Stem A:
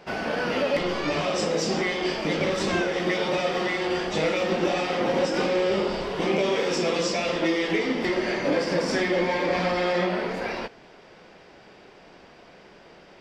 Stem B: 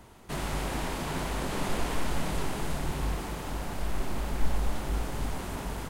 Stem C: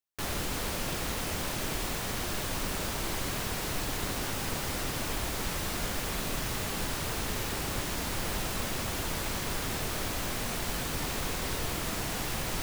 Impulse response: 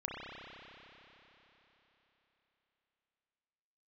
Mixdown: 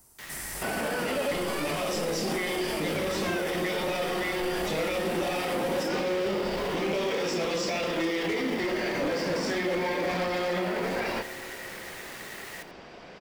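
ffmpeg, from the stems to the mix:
-filter_complex "[0:a]aeval=exprs='0.133*(abs(mod(val(0)/0.133+3,4)-2)-1)':channel_layout=same,adelay=550,volume=2.5dB,asplit=2[link_01][link_02];[link_02]volume=-19dB[link_03];[1:a]bandreject=frequency=6700:width=12,aexciter=amount=9:drive=5.8:freq=5000,volume=-13dB[link_04];[2:a]aeval=exprs='val(0)*sin(2*PI*1900*n/s)':channel_layout=same,volume=-6.5dB,asplit=2[link_05][link_06];[link_06]volume=-15.5dB[link_07];[3:a]atrim=start_sample=2205[link_08];[link_03][link_08]afir=irnorm=-1:irlink=0[link_09];[link_07]aecho=0:1:86:1[link_10];[link_01][link_04][link_05][link_09][link_10]amix=inputs=5:normalize=0,alimiter=limit=-21.5dB:level=0:latency=1:release=40"

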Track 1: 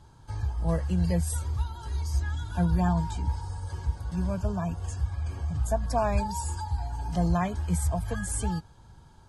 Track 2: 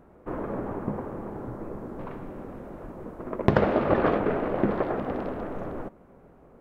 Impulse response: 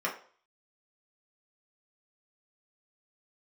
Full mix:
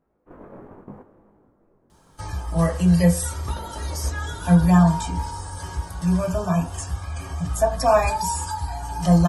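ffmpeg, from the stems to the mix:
-filter_complex "[0:a]acrossover=split=6100[link_01][link_02];[link_02]acompressor=threshold=-45dB:ratio=4:attack=1:release=60[link_03];[link_01][link_03]amix=inputs=2:normalize=0,aemphasis=mode=production:type=50kf,adelay=1900,volume=2dB,asplit=2[link_04][link_05];[link_05]volume=-3dB[link_06];[1:a]flanger=delay=19:depth=2.6:speed=0.8,volume=-7dB,afade=type=out:start_time=0.92:duration=0.65:silence=0.375837[link_07];[2:a]atrim=start_sample=2205[link_08];[link_06][link_08]afir=irnorm=-1:irlink=0[link_09];[link_04][link_07][link_09]amix=inputs=3:normalize=0,agate=range=-7dB:threshold=-42dB:ratio=16:detection=peak"

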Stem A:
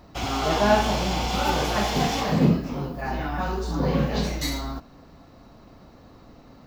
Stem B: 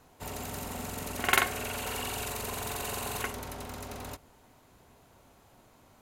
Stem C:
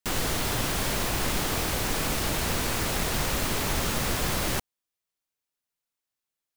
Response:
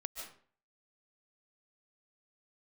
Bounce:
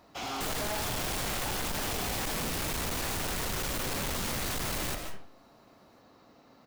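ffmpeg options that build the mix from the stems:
-filter_complex "[0:a]highpass=frequency=400:poles=1,volume=-5dB[link_01];[1:a]volume=-10.5dB[link_02];[2:a]adelay=350,volume=-0.5dB,asplit=2[link_03][link_04];[link_04]volume=-5dB[link_05];[3:a]atrim=start_sample=2205[link_06];[link_05][link_06]afir=irnorm=-1:irlink=0[link_07];[link_01][link_02][link_03][link_07]amix=inputs=4:normalize=0,volume=31.5dB,asoftclip=hard,volume=-31.5dB"

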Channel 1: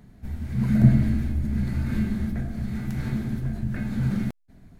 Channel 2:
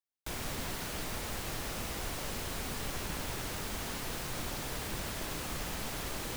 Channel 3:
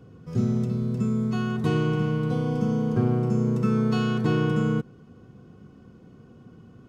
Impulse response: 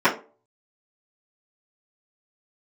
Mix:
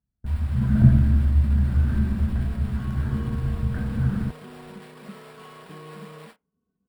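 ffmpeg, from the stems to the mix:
-filter_complex "[0:a]agate=range=-12dB:threshold=-36dB:ratio=16:detection=peak,highshelf=frequency=1900:width_type=q:width=3:gain=-8,volume=-4dB[link_01];[1:a]acrusher=samples=7:mix=1:aa=0.000001,alimiter=level_in=7.5dB:limit=-24dB:level=0:latency=1:release=52,volume=-7.5dB,highpass=frequency=480:width=0.5412,highpass=frequency=480:width=1.3066,volume=-9.5dB,asplit=2[link_02][link_03];[link_03]volume=-20.5dB[link_04];[2:a]aecho=1:1:4.5:0.72,acompressor=threshold=-33dB:ratio=3,adelay=1450,volume=-15.5dB,asplit=2[link_05][link_06];[link_06]volume=-17dB[link_07];[3:a]atrim=start_sample=2205[link_08];[link_04][link_07]amix=inputs=2:normalize=0[link_09];[link_09][link_08]afir=irnorm=-1:irlink=0[link_10];[link_01][link_02][link_05][link_10]amix=inputs=4:normalize=0,agate=range=-23dB:threshold=-46dB:ratio=16:detection=peak,equalizer=frequency=66:width_type=o:width=1.6:gain=13"

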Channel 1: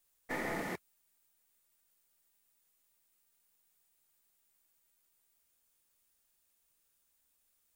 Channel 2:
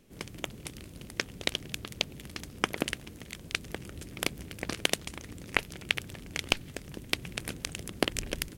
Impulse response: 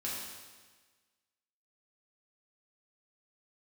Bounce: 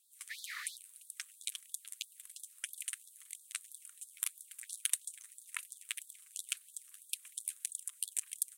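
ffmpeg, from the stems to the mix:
-filter_complex "[0:a]asoftclip=type=hard:threshold=-27.5dB,volume=1.5dB[link_01];[1:a]highshelf=frequency=6400:width_type=q:width=3:gain=13,volume=-11.5dB[link_02];[link_01][link_02]amix=inputs=2:normalize=0,equalizer=frequency=250:width_type=o:width=0.67:gain=-5,equalizer=frequency=630:width_type=o:width=0.67:gain=-3,equalizer=frequency=4000:width_type=o:width=0.67:gain=10,flanger=delay=1.8:depth=9.2:regen=5:speed=1.8:shape=triangular,afftfilt=real='re*gte(b*sr/1024,970*pow(3400/970,0.5+0.5*sin(2*PI*3*pts/sr)))':imag='im*gte(b*sr/1024,970*pow(3400/970,0.5+0.5*sin(2*PI*3*pts/sr)))':win_size=1024:overlap=0.75"

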